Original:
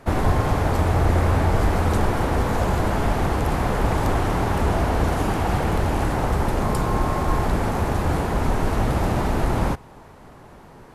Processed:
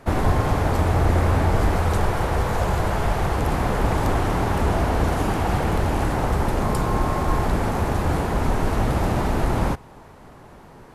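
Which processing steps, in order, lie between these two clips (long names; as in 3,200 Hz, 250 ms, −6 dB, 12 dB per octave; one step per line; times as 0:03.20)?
0:01.76–0:03.38: parametric band 260 Hz −9 dB 0.53 octaves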